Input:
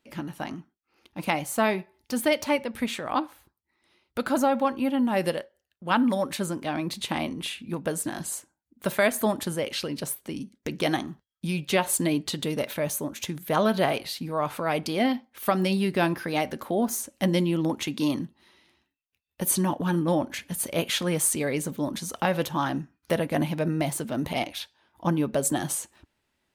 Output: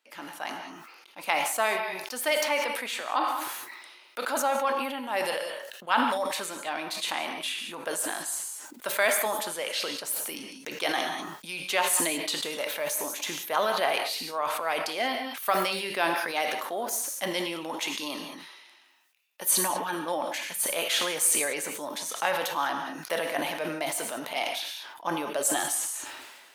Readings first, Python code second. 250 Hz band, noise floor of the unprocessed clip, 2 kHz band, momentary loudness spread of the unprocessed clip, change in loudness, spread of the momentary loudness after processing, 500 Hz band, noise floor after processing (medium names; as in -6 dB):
-11.5 dB, -81 dBFS, +2.5 dB, 10 LU, -1.0 dB, 12 LU, -3.0 dB, -53 dBFS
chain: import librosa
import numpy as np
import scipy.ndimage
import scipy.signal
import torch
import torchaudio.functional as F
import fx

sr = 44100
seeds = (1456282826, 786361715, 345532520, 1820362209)

y = scipy.signal.sosfilt(scipy.signal.butter(2, 700.0, 'highpass', fs=sr, output='sos'), x)
y = fx.rev_gated(y, sr, seeds[0], gate_ms=220, shape='flat', drr_db=8.5)
y = fx.sustainer(y, sr, db_per_s=36.0)